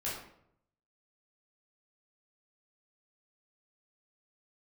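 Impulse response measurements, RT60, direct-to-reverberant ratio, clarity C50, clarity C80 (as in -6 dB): 0.70 s, -8.0 dB, 2.5 dB, 6.5 dB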